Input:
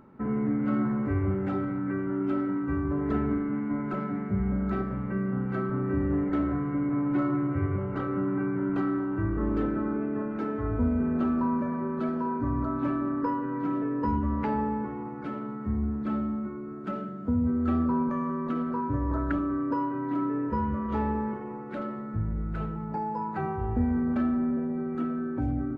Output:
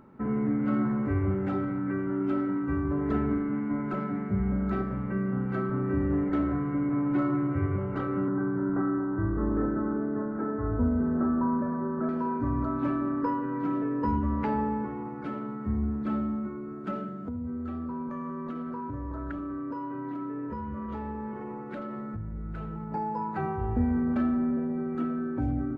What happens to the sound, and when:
8.28–12.09 s: steep low-pass 1.8 kHz 48 dB/octave
17.15–22.92 s: compression 5:1, threshold -32 dBFS

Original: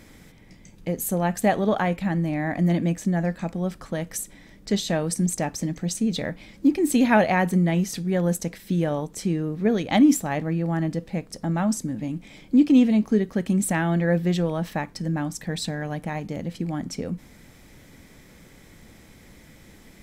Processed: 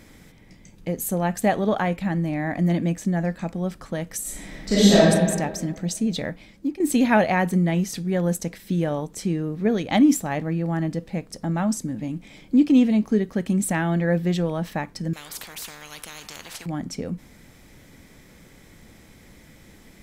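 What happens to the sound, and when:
4.21–4.96 s: reverb throw, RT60 1.6 s, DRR -10.5 dB
6.27–6.80 s: fade out, to -12 dB
15.13–16.66 s: spectrum-flattening compressor 10:1

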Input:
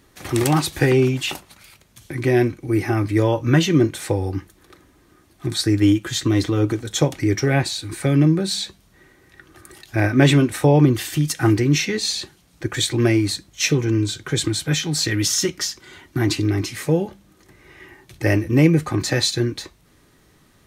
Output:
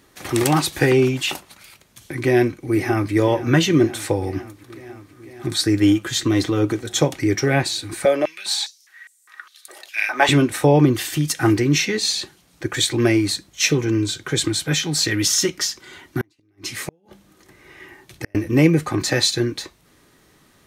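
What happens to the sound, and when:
2.16–3.13 s: echo throw 500 ms, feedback 80%, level -16.5 dB
8.05–10.29 s: step-sequenced high-pass 4.9 Hz 580–8000 Hz
16.18–18.35 s: inverted gate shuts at -12 dBFS, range -42 dB
whole clip: bass shelf 140 Hz -8 dB; trim +2 dB

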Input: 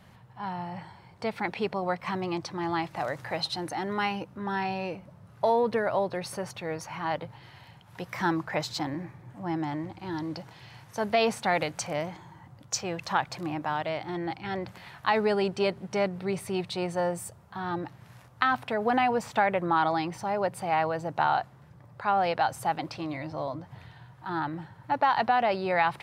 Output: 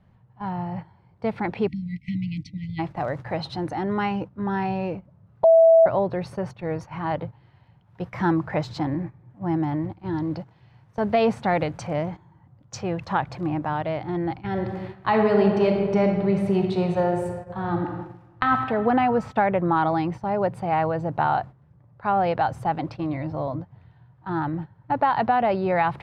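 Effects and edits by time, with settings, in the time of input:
1.68–2.79 s: spectral selection erased 310–1900 Hz
5.44–5.86 s: bleep 656 Hz -14 dBFS
14.48–18.48 s: reverb throw, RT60 1.9 s, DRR 2.5 dB
whole clip: gate -39 dBFS, range -12 dB; low-pass 3.9 kHz 6 dB/octave; tilt EQ -2.5 dB/octave; trim +2.5 dB

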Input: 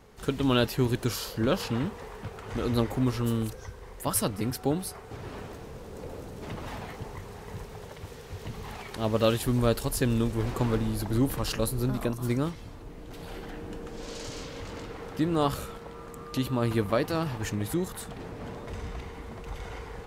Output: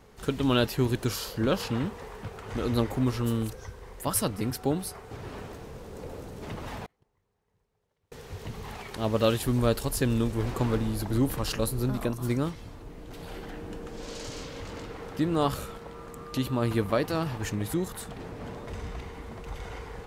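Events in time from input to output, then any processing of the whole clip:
6.86–8.12 s: gate -31 dBFS, range -35 dB

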